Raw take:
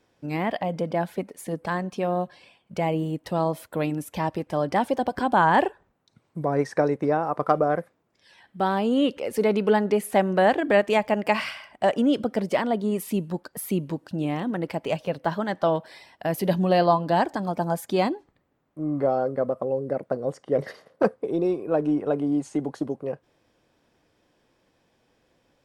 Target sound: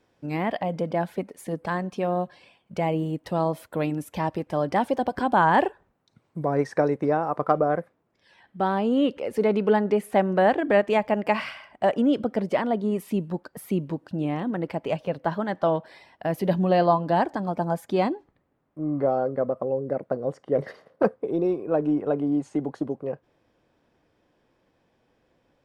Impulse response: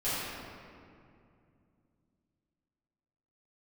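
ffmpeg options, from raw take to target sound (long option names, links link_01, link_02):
-af "asetnsamples=nb_out_samples=441:pad=0,asendcmd='7.39 highshelf g -10.5',highshelf=frequency=3800:gain=-4.5"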